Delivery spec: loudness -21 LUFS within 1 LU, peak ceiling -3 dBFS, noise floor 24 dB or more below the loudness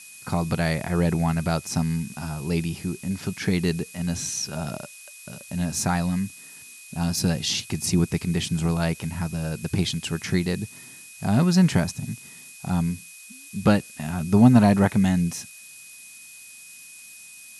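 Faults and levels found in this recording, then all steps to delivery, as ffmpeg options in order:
steady tone 2500 Hz; tone level -47 dBFS; noise floor -45 dBFS; noise floor target -48 dBFS; loudness -24.0 LUFS; peak -3.0 dBFS; loudness target -21.0 LUFS
-> -af "bandreject=f=2.5k:w=30"
-af "afftdn=nr=6:nf=-45"
-af "volume=3dB,alimiter=limit=-3dB:level=0:latency=1"

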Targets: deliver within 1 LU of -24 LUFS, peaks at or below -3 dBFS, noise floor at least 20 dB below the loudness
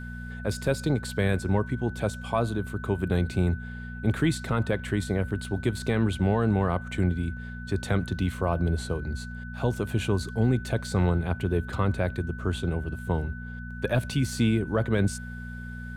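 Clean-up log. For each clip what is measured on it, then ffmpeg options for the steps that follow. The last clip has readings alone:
hum 60 Hz; harmonics up to 240 Hz; hum level -35 dBFS; steady tone 1500 Hz; tone level -42 dBFS; loudness -28.0 LUFS; peak -13.0 dBFS; loudness target -24.0 LUFS
-> -af "bandreject=f=60:t=h:w=4,bandreject=f=120:t=h:w=4,bandreject=f=180:t=h:w=4,bandreject=f=240:t=h:w=4"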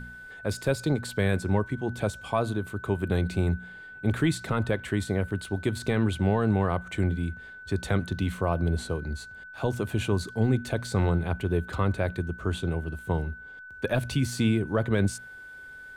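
hum none; steady tone 1500 Hz; tone level -42 dBFS
-> -af "bandreject=f=1.5k:w=30"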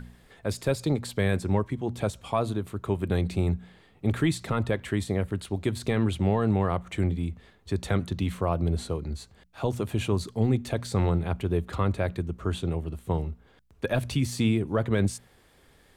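steady tone none; loudness -28.5 LUFS; peak -13.5 dBFS; loudness target -24.0 LUFS
-> -af "volume=4.5dB"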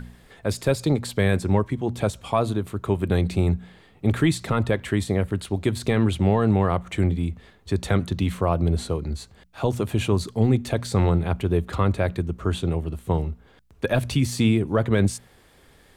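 loudness -24.0 LUFS; peak -9.0 dBFS; noise floor -55 dBFS

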